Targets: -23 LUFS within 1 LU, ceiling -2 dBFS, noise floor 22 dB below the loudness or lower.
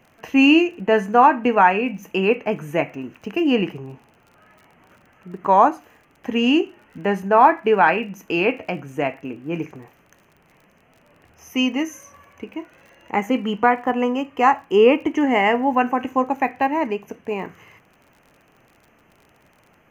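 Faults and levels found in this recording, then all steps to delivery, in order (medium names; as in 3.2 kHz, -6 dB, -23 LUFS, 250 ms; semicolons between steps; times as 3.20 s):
tick rate 37 per s; loudness -19.5 LUFS; peak level -1.5 dBFS; loudness target -23.0 LUFS
-> de-click; trim -3.5 dB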